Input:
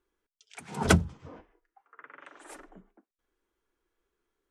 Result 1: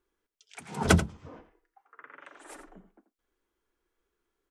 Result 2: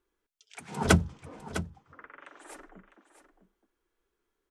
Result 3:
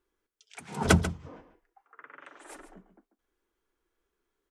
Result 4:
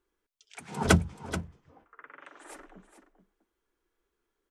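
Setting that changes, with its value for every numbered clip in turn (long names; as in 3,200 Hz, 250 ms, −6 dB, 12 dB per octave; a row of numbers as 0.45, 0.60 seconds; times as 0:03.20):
single-tap delay, delay time: 85, 654, 140, 431 milliseconds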